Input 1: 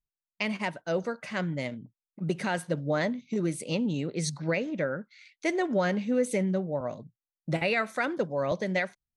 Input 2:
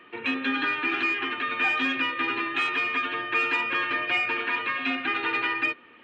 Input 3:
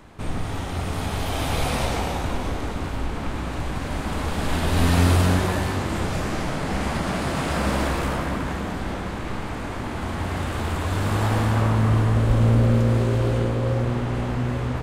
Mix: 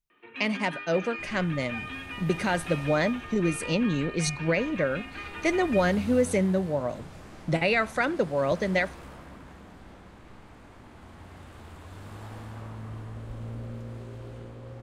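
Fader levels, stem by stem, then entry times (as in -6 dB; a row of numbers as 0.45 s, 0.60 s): +3.0 dB, -13.0 dB, -20.0 dB; 0.00 s, 0.10 s, 1.00 s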